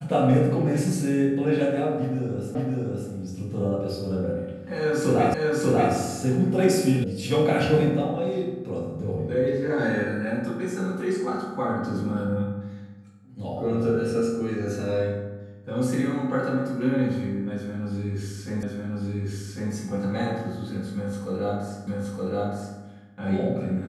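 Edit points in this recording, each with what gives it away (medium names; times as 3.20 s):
2.55 s: repeat of the last 0.56 s
5.34 s: repeat of the last 0.59 s
7.04 s: sound stops dead
18.63 s: repeat of the last 1.1 s
21.87 s: repeat of the last 0.92 s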